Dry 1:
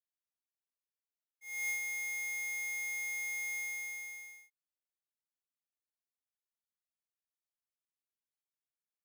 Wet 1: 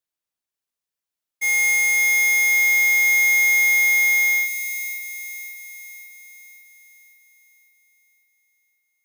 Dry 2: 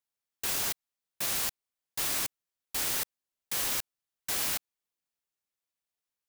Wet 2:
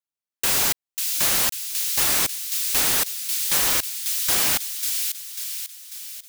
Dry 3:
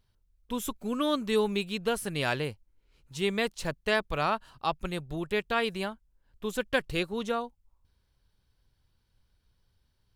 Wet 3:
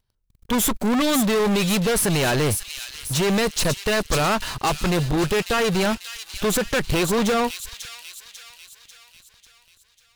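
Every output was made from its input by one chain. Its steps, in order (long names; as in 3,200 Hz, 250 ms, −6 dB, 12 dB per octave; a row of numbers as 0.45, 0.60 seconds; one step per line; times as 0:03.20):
brickwall limiter −22.5 dBFS
leveller curve on the samples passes 5
delay with a high-pass on its return 544 ms, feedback 52%, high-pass 3,200 Hz, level −4 dB
normalise the peak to −12 dBFS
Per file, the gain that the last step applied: +16.0, +4.5, +5.5 decibels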